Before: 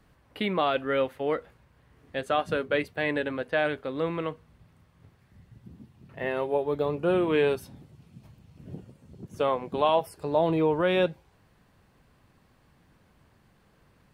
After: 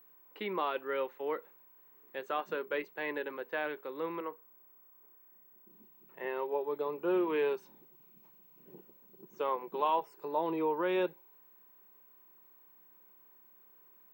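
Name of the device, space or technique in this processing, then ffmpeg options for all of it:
old television with a line whistle: -filter_complex "[0:a]asettb=1/sr,asplit=3[link_01][link_02][link_03];[link_01]atrim=end=4.204[link_04];[link_02]atrim=start=4.2:end=5.7,asetpts=PTS-STARTPTS,afade=type=in:duration=0.004:curve=qsin,afade=type=out:start_time=1.496:duration=0.004:curve=qsin,acrossover=split=200 2400:gain=0.158 1 0.0891[link_05][link_06][link_07];[link_05][link_06][link_07]amix=inputs=3:normalize=0[link_08];[link_03]atrim=start=5.696[link_09];[link_04][link_08]acrossfade=duration=0.004:curve1=hsin:curve2=qsin[link_10];[link_10][link_09]acrossfade=duration=0.004:curve1=qsin:curve2=hsin,highpass=frequency=220:width=0.5412,highpass=frequency=220:width=1.3066,equalizer=frequency=260:width_type=q:width=4:gain=-9,equalizer=frequency=370:width_type=q:width=4:gain=6,equalizer=frequency=670:width_type=q:width=4:gain=-7,equalizer=frequency=960:width_type=q:width=4:gain=8,equalizer=frequency=3300:width_type=q:width=4:gain=-4,equalizer=frequency=4800:width_type=q:width=4:gain=-7,lowpass=frequency=6800:width=0.5412,lowpass=frequency=6800:width=1.3066,aeval=exprs='val(0)+0.00316*sin(2*PI*15734*n/s)':channel_layout=same,volume=-8dB"

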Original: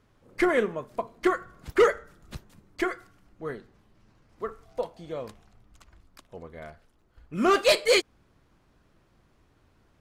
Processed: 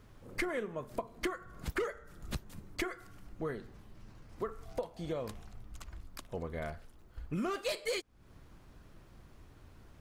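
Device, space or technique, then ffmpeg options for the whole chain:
ASMR close-microphone chain: -af "lowshelf=frequency=120:gain=7,acompressor=threshold=-37dB:ratio=8,highshelf=frequency=10000:gain=7,volume=3.5dB"

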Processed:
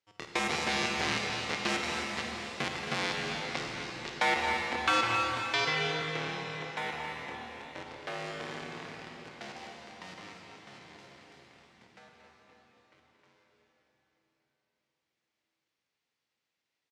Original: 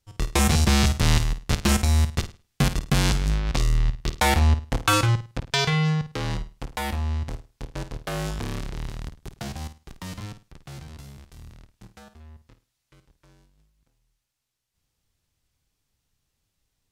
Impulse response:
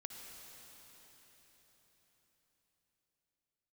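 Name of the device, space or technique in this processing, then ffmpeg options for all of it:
station announcement: -filter_complex "[0:a]highpass=340,lowpass=4800,equalizer=frequency=2100:width_type=o:width=0.56:gain=5,aecho=1:1:227.4|268.2:0.251|0.282[link_01];[1:a]atrim=start_sample=2205[link_02];[link_01][link_02]afir=irnorm=-1:irlink=0,asettb=1/sr,asplit=3[link_03][link_04][link_05];[link_03]atrim=end=5.994[link_06];[link_04]atrim=start=5.99:end=7.87,asetpts=PTS-STARTPTS,afade=type=in:duration=0.004:curve=qsin,afade=type=out:start_time=1.876:duration=0.004:curve=qsin,bandreject=frequency=4700:width=9.1[link_07];[link_05]atrim=start=7.866[link_08];[link_06][link_07]acrossfade=duration=0.004:curve1=hsin:curve2=qsin[link_09];[link_09][link_08]acrossfade=duration=0.004:curve1=qsin:curve2=hsin,volume=-1.5dB"

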